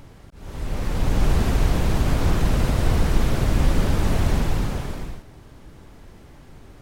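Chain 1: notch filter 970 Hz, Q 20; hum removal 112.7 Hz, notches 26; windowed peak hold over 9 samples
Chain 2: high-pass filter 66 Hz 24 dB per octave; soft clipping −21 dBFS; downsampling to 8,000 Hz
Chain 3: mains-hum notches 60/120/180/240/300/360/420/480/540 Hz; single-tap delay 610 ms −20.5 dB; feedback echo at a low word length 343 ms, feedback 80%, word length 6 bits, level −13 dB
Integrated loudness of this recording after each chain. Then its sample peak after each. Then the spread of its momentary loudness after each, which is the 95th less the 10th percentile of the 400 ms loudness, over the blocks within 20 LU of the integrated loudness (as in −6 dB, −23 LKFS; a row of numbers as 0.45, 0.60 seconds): −24.0, −28.5, −23.5 LKFS; −7.5, −21.0, −6.0 dBFS; 12, 16, 18 LU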